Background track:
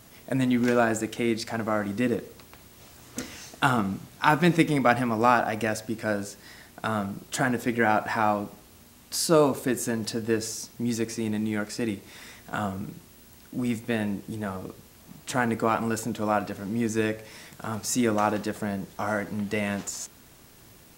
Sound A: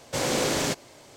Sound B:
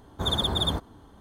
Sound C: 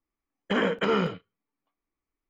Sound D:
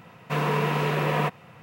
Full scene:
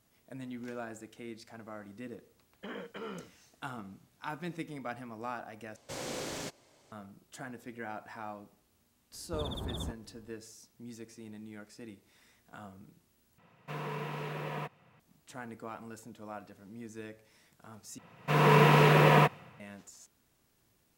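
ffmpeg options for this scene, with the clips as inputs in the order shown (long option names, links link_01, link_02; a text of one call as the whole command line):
ffmpeg -i bed.wav -i cue0.wav -i cue1.wav -i cue2.wav -i cue3.wav -filter_complex "[4:a]asplit=2[link_01][link_02];[0:a]volume=-19dB[link_03];[2:a]tiltshelf=frequency=700:gain=5[link_04];[link_02]dynaudnorm=framelen=110:gausssize=7:maxgain=14dB[link_05];[link_03]asplit=4[link_06][link_07][link_08][link_09];[link_06]atrim=end=5.764[link_10];[1:a]atrim=end=1.16,asetpts=PTS-STARTPTS,volume=-13.5dB[link_11];[link_07]atrim=start=6.916:end=13.384[link_12];[link_01]atrim=end=1.62,asetpts=PTS-STARTPTS,volume=-14dB[link_13];[link_08]atrim=start=14.996:end=17.984[link_14];[link_05]atrim=end=1.62,asetpts=PTS-STARTPTS,volume=-8dB[link_15];[link_09]atrim=start=19.596[link_16];[3:a]atrim=end=2.29,asetpts=PTS-STARTPTS,volume=-18dB,afade=type=in:duration=0.004:curve=hsin,afade=type=out:start_time=2.286:duration=0.004:curve=hsin,adelay=2130[link_17];[link_04]atrim=end=1.2,asetpts=PTS-STARTPTS,volume=-13.5dB,afade=type=in:duration=0.004:curve=hsin,afade=type=out:start_time=1.196:duration=0.004:curve=hsin,adelay=9130[link_18];[link_10][link_11]acrossfade=duration=0.004:curve1=hsin:curve2=hsin[link_19];[link_19][link_12]acrossfade=duration=0.004:curve1=hsin:curve2=hsin[link_20];[link_20][link_13]acrossfade=duration=0.004:curve1=hsin:curve2=hsin[link_21];[link_21][link_14]acrossfade=duration=0.004:curve1=hsin:curve2=hsin[link_22];[link_22][link_15]acrossfade=duration=0.004:curve1=hsin:curve2=hsin[link_23];[link_23][link_16]acrossfade=duration=0.004:curve1=hsin:curve2=hsin[link_24];[link_24][link_17][link_18]amix=inputs=3:normalize=0" out.wav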